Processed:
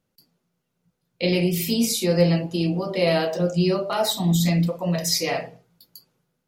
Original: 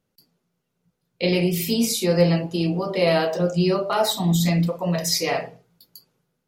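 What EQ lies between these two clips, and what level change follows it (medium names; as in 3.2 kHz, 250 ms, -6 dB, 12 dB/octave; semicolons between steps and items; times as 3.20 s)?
band-stop 420 Hz, Q 12; dynamic bell 1.1 kHz, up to -4 dB, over -36 dBFS, Q 1.1; 0.0 dB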